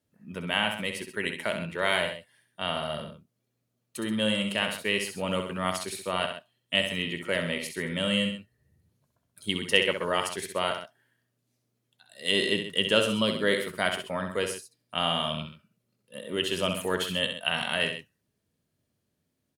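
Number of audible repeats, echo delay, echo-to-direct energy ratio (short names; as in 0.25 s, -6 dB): 2, 65 ms, -6.0 dB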